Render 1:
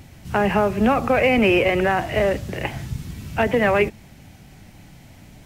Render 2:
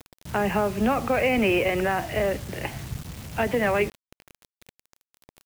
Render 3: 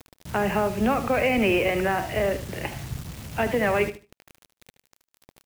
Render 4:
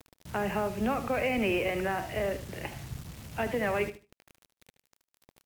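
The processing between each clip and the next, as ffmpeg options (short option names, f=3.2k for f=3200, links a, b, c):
-af "acrusher=bits=5:mix=0:aa=0.000001,volume=-5dB"
-af "aecho=1:1:75|150|225:0.251|0.0502|0.01"
-af "volume=-6.5dB" -ar 48000 -c:a libmp3lame -b:a 224k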